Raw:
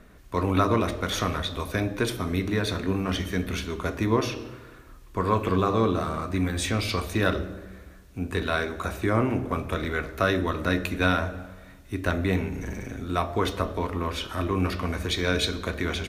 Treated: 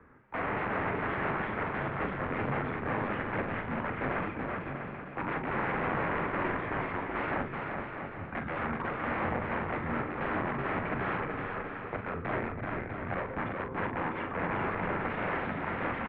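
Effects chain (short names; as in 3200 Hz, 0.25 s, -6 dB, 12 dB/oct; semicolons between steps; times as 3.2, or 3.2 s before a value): random-step tremolo; added harmonics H 4 -24 dB, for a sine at -9 dBFS; wrapped overs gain 25 dB; doubler 42 ms -8.5 dB; bouncing-ball echo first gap 0.38 s, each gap 0.7×, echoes 5; mistuned SSB -170 Hz 260–2300 Hz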